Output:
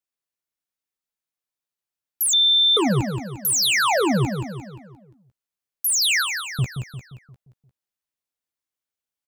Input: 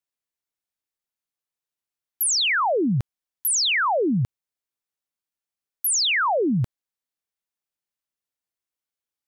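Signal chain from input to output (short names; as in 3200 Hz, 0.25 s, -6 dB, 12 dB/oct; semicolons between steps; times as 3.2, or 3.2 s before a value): 6.09–6.59 steep high-pass 1500 Hz 36 dB/oct; sample leveller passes 1; doubler 15 ms -11 dB; feedback echo 0.175 s, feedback 49%, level -7 dB; 2.33–2.77 bleep 3560 Hz -13.5 dBFS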